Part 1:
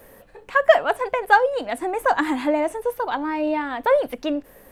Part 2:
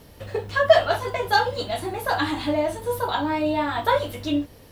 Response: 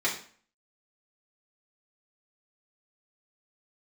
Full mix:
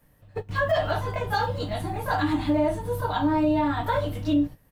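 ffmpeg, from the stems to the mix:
-filter_complex "[0:a]lowshelf=f=150:g=5,acrusher=bits=7:mode=log:mix=0:aa=0.000001,volume=0.168,asplit=2[s0][s1];[1:a]tiltshelf=f=970:g=8,aecho=1:1:6.6:0.56,adelay=16,volume=0.944[s2];[s1]apad=whole_len=209023[s3];[s2][s3]sidechaingate=range=0.112:threshold=0.00158:ratio=16:detection=peak[s4];[s0][s4]amix=inputs=2:normalize=0,equalizer=f=440:w=1.3:g=-11,alimiter=limit=0.188:level=0:latency=1:release=60"

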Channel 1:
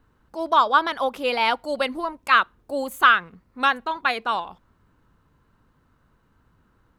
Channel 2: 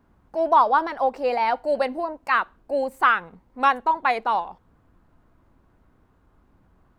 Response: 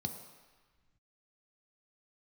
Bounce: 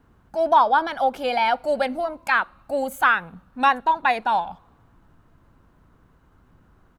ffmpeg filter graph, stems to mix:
-filter_complex "[0:a]acompressor=threshold=0.0631:ratio=6,volume=1.06,asplit=2[s0][s1];[s1]volume=0.141[s2];[1:a]adelay=1.4,volume=1.12[s3];[2:a]atrim=start_sample=2205[s4];[s2][s4]afir=irnorm=-1:irlink=0[s5];[s0][s3][s5]amix=inputs=3:normalize=0"

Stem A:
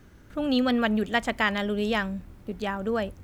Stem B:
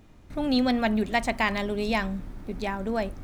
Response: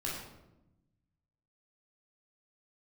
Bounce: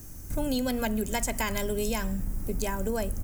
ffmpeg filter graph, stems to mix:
-filter_complex "[0:a]highshelf=f=2700:g=11,volume=0.355,asplit=2[s0][s1];[s1]volume=0.15[s2];[1:a]lowpass=3400,lowshelf=f=170:g=6,adelay=1.6,volume=0.841[s3];[2:a]atrim=start_sample=2205[s4];[s2][s4]afir=irnorm=-1:irlink=0[s5];[s0][s3][s5]amix=inputs=3:normalize=0,aexciter=amount=9.3:drive=5.4:freq=5400,lowshelf=f=260:g=6.5,acompressor=threshold=0.0562:ratio=6"

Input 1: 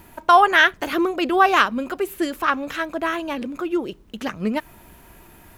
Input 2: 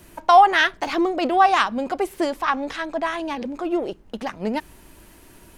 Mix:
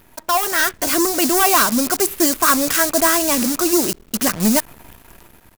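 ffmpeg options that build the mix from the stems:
-filter_complex "[0:a]acrusher=bits=7:dc=4:mix=0:aa=0.000001,asoftclip=type=tanh:threshold=0.119,volume=0.944[s0];[1:a]acrusher=bits=4:mix=0:aa=0.000001,aexciter=amount=8.1:drive=7.2:freq=4300,volume=-1,adelay=2.6,volume=0.251[s1];[s0][s1]amix=inputs=2:normalize=0,dynaudnorm=f=270:g=5:m=3.35"

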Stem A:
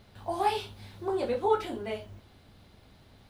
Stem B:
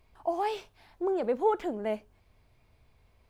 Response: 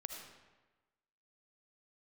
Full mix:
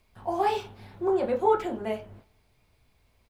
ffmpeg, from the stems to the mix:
-filter_complex "[0:a]lowpass=1900,agate=range=0.1:threshold=0.00282:ratio=16:detection=peak,equalizer=f=64:w=1.9:g=-11.5,volume=1.19,asplit=2[s0][s1];[s1]volume=0.119[s2];[1:a]highshelf=f=2600:g=8.5,volume=-1,adelay=0.4,volume=0.708[s3];[2:a]atrim=start_sample=2205[s4];[s2][s4]afir=irnorm=-1:irlink=0[s5];[s0][s3][s5]amix=inputs=3:normalize=0"

